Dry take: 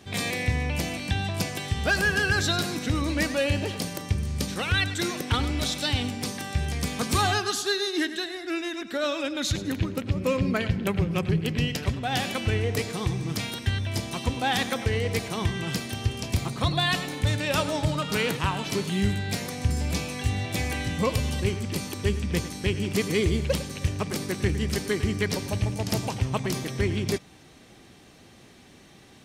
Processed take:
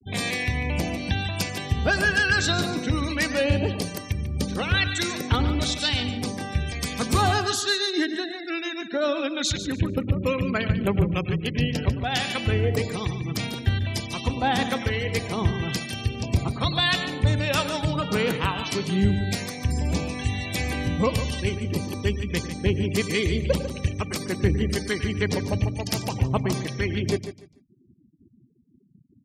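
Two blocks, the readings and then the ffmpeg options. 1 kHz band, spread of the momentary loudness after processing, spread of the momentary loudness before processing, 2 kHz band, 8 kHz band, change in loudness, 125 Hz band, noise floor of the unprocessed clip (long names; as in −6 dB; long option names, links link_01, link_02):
+2.0 dB, 6 LU, 5 LU, +2.0 dB, 0.0 dB, +2.0 dB, +2.0 dB, −52 dBFS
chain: -filter_complex "[0:a]afftfilt=real='re*gte(hypot(re,im),0.0158)':imag='im*gte(hypot(re,im),0.0158)':win_size=1024:overlap=0.75,acrossover=split=1200[link_01][link_02];[link_01]aeval=exprs='val(0)*(1-0.5/2+0.5/2*cos(2*PI*1.1*n/s))':channel_layout=same[link_03];[link_02]aeval=exprs='val(0)*(1-0.5/2-0.5/2*cos(2*PI*1.1*n/s))':channel_layout=same[link_04];[link_03][link_04]amix=inputs=2:normalize=0,aecho=1:1:146|292|438:0.282|0.0592|0.0124,volume=4dB"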